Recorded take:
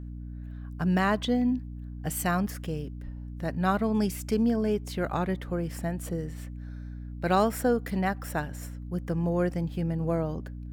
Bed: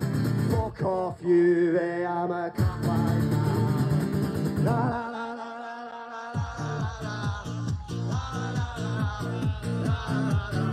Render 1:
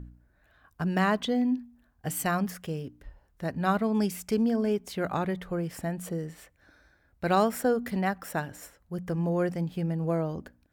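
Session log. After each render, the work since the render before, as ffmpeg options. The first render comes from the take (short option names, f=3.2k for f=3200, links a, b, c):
-af "bandreject=f=60:t=h:w=4,bandreject=f=120:t=h:w=4,bandreject=f=180:t=h:w=4,bandreject=f=240:t=h:w=4,bandreject=f=300:t=h:w=4"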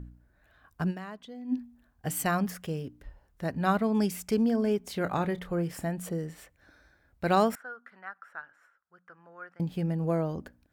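-filter_complex "[0:a]asettb=1/sr,asplit=3[a][b][c];[a]atrim=end=4.824[d];[b]atrim=start=4.82:end=5.84,asetpts=PTS-STARTPTS,afade=t=in:d=0.004:c=qsin,afade=t=out:st=1.016:d=0.004:c=qsin,asplit=2[e][f];[f]adelay=29,volume=-12.5dB[g];[e][g]amix=inputs=2:normalize=0,atrim=end_sample=44982[h];[c]atrim=start=5.836[i];[d][h]acrossfade=d=0.004:c1=hsin:c2=qsin[j];[j][i]acrossfade=d=0.004:c1=qsin:c2=hsin,asettb=1/sr,asplit=3[k][l][m];[k]atrim=end=7.554[n];[l]atrim=start=7.55:end=9.6,asetpts=PTS-STARTPTS,afade=t=in:d=0.004:c=qsin,afade=t=out:st=2.046:d=0.004:c=qsin,bandpass=f=1.4k:t=q:w=6.1[o];[m]atrim=start=9.596[p];[n][o]acrossfade=d=0.004:c1=hsin:c2=qsin[q];[q][p]acrossfade=d=0.004:c1=qsin:c2=hsin,asplit=3[r][s][t];[r]atrim=end=1.2,asetpts=PTS-STARTPTS,afade=t=out:st=0.9:d=0.3:c=exp:silence=0.141254[u];[s]atrim=start=1.2:end=1.23,asetpts=PTS-STARTPTS,volume=-17dB[v];[t]atrim=start=1.23,asetpts=PTS-STARTPTS,afade=t=in:d=0.3:c=exp:silence=0.141254[w];[u][v][w]concat=n=3:v=0:a=1"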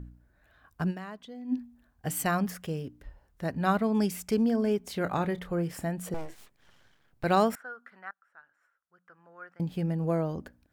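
-filter_complex "[0:a]asettb=1/sr,asplit=3[a][b][c];[a]atrim=end=6.144[d];[b]atrim=start=6.14:end=7.24,asetpts=PTS-STARTPTS,afade=t=in:d=0.004:c=qsin,afade=t=out:st=1.096:d=0.004:c=qsin,aeval=exprs='abs(val(0))':c=same[e];[c]atrim=start=7.236[f];[d][e]acrossfade=d=0.004:c1=hsin:c2=qsin[g];[g][f]acrossfade=d=0.004:c1=qsin:c2=hsin,asplit=2[h][i];[h]atrim=end=8.11,asetpts=PTS-STARTPTS,afade=t=out:st=8.106:d=0.004:c=hsin:silence=0.0707946[j];[i]atrim=start=8.11,asetpts=PTS-STARTPTS,afade=t=in:d=1.61:silence=0.0707946[k];[j][k]concat=n=2:v=0:a=1"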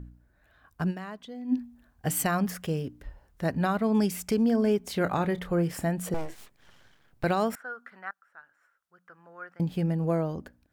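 -af "dynaudnorm=f=260:g=9:m=4dB,alimiter=limit=-16dB:level=0:latency=1:release=307"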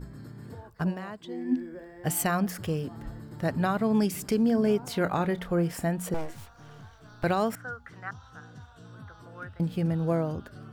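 -filter_complex "[1:a]volume=-18.5dB[a];[0:a][a]amix=inputs=2:normalize=0"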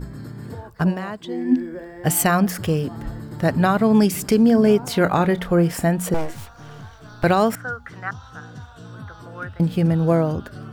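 -af "volume=9dB"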